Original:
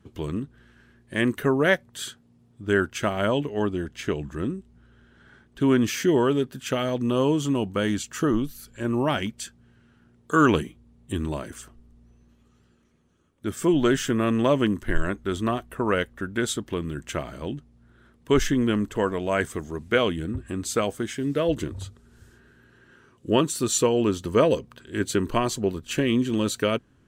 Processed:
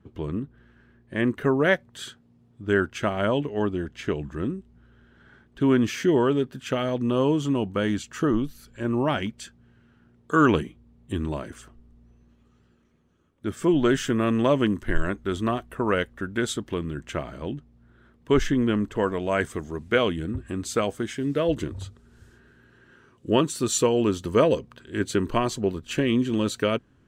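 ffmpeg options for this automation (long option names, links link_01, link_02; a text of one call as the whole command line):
ffmpeg -i in.wav -af "asetnsamples=nb_out_samples=441:pad=0,asendcmd='1.41 lowpass f 3700;13.89 lowpass f 6700;16.83 lowpass f 3400;19.03 lowpass f 6400;23.66 lowpass f 11000;24.44 lowpass f 5400',lowpass=frequency=1700:poles=1" out.wav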